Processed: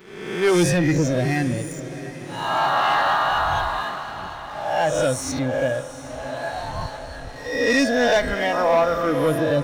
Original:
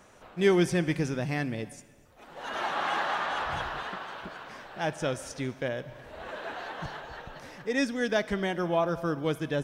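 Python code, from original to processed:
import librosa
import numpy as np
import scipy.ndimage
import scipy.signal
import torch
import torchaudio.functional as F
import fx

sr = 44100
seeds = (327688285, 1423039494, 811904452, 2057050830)

y = fx.spec_swells(x, sr, rise_s=1.26)
y = fx.noise_reduce_blind(y, sr, reduce_db=12)
y = fx.leveller(y, sr, passes=2)
y = fx.echo_diffused(y, sr, ms=748, feedback_pct=51, wet_db=-13)
y = F.gain(torch.from_numpy(y), 2.0).numpy()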